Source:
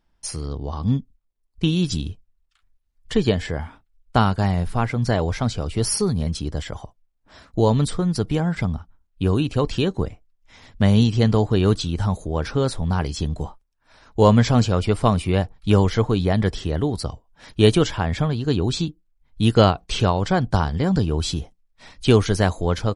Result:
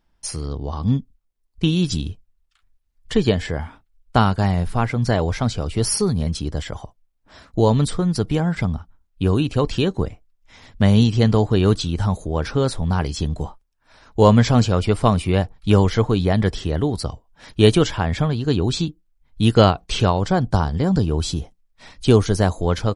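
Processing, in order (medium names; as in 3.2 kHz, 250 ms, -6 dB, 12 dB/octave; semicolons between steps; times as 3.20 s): 20.17–22.62 s: dynamic bell 2.3 kHz, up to -6 dB, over -38 dBFS, Q 0.94; trim +1.5 dB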